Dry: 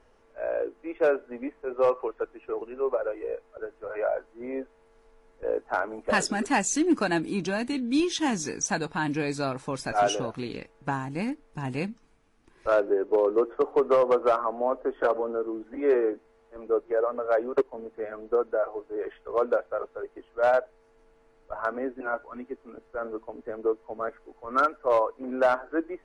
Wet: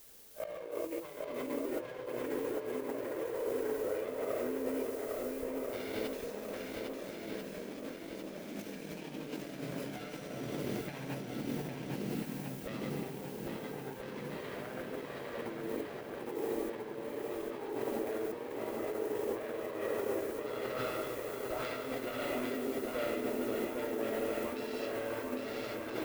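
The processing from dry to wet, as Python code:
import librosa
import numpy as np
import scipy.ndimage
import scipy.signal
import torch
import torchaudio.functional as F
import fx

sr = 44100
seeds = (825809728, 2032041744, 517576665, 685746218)

p1 = fx.self_delay(x, sr, depth_ms=0.39)
p2 = fx.rev_plate(p1, sr, seeds[0], rt60_s=1.6, hf_ratio=0.95, predelay_ms=0, drr_db=-5.5)
p3 = fx.level_steps(p2, sr, step_db=13)
p4 = p2 + (p3 * librosa.db_to_amplitude(0.5))
p5 = fx.peak_eq(p4, sr, hz=1200.0, db=-11.5, octaves=2.0)
p6 = fx.dmg_noise_colour(p5, sr, seeds[1], colour='violet', level_db=-39.0)
p7 = fx.over_compress(p6, sr, threshold_db=-32.0, ratio=-1.0)
p8 = fx.highpass(p7, sr, hz=110.0, slope=6)
p9 = fx.high_shelf(p8, sr, hz=3700.0, db=-11.5)
p10 = p9 + fx.echo_swing(p9, sr, ms=1341, ratio=1.5, feedback_pct=54, wet_db=-3.0, dry=0)
p11 = np.sign(p10) * np.maximum(np.abs(p10) - 10.0 ** (-47.5 / 20.0), 0.0)
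y = p11 * librosa.db_to_amplitude(-8.5)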